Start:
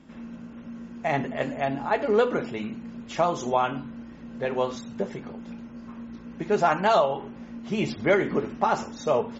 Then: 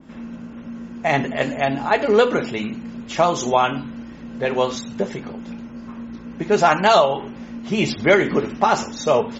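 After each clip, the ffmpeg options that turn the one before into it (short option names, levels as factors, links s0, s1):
-af "adynamicequalizer=threshold=0.0112:dfrequency=2000:dqfactor=0.7:tfrequency=2000:tqfactor=0.7:attack=5:release=100:ratio=0.375:range=3:mode=boostabove:tftype=highshelf,volume=2"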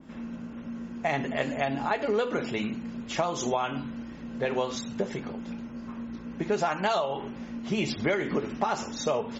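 -af "acompressor=threshold=0.1:ratio=5,volume=0.631"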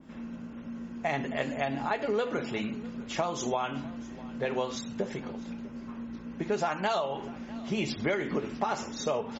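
-af "aecho=1:1:650:0.1,volume=0.75"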